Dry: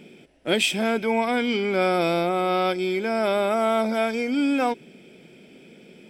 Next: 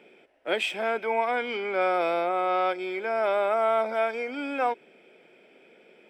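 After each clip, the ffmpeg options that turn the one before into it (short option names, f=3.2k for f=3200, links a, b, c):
-filter_complex "[0:a]acrossover=split=420 2500:gain=0.0794 1 0.178[a][b][c];[a][b][c]amix=inputs=3:normalize=0"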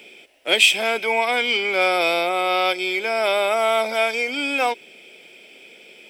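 -af "aexciter=amount=3:drive=8.9:freq=2.3k,volume=4dB"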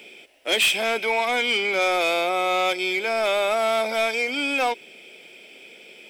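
-af "asoftclip=type=tanh:threshold=-15dB"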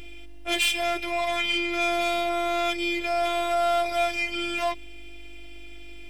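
-af "aeval=exprs='val(0)+0.0178*(sin(2*PI*50*n/s)+sin(2*PI*2*50*n/s)/2+sin(2*PI*3*50*n/s)/3+sin(2*PI*4*50*n/s)/4+sin(2*PI*5*50*n/s)/5)':c=same,afftfilt=real='hypot(re,im)*cos(PI*b)':imag='0':win_size=512:overlap=0.75"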